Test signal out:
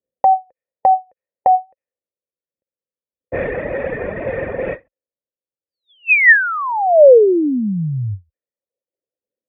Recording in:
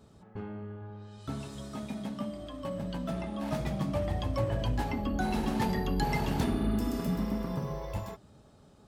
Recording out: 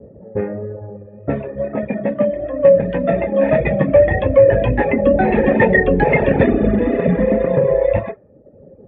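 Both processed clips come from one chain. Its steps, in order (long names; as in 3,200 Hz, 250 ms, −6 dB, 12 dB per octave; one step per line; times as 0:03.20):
formant resonators in series e
reverb reduction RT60 0.94 s
high-pass filter 47 Hz
low-pass that shuts in the quiet parts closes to 370 Hz, open at −45.5 dBFS
tape wow and flutter 27 cents
boost into a limiter +35.5 dB
every ending faded ahead of time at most 350 dB per second
level −1 dB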